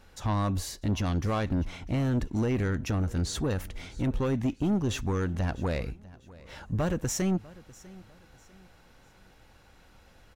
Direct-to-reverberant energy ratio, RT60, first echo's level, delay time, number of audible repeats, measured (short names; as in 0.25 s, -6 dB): none, none, -21.0 dB, 0.648 s, 2